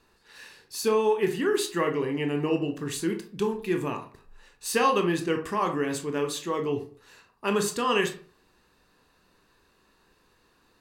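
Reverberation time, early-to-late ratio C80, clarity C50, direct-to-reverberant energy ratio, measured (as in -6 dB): 0.45 s, 16.0 dB, 10.5 dB, 4.0 dB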